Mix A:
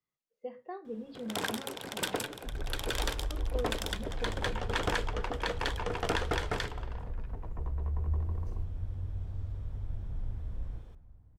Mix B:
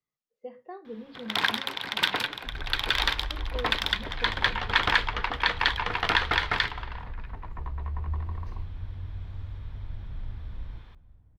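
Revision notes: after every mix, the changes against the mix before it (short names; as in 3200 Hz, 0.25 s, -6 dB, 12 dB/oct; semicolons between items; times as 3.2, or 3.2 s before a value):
first sound: add graphic EQ 500/1000/2000/4000/8000 Hz -6/+8/+10/+12/-10 dB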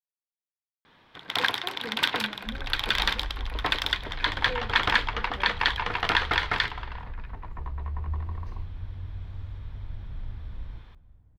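speech: entry +0.95 s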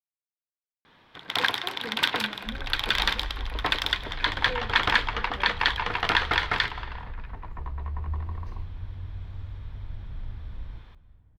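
first sound: send +6.0 dB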